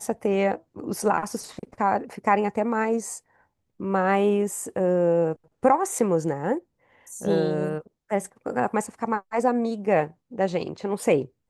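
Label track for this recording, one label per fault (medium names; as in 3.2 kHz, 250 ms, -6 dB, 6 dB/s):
5.990000	5.990000	dropout 3.5 ms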